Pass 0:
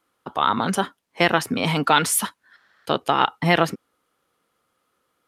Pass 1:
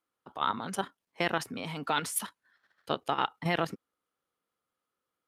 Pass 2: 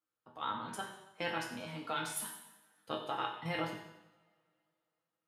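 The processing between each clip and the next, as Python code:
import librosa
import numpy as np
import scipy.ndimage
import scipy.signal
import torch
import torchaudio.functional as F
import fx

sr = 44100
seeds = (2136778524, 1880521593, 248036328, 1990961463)

y1 = fx.level_steps(x, sr, step_db=10)
y1 = F.gain(torch.from_numpy(y1), -7.5).numpy()
y2 = fx.resonator_bank(y1, sr, root=44, chord='minor', decay_s=0.21)
y2 = fx.echo_feedback(y2, sr, ms=91, feedback_pct=48, wet_db=-13.0)
y2 = fx.rev_double_slope(y2, sr, seeds[0], early_s=0.76, late_s=2.7, knee_db=-25, drr_db=2.5)
y2 = F.gain(torch.from_numpy(y2), 2.0).numpy()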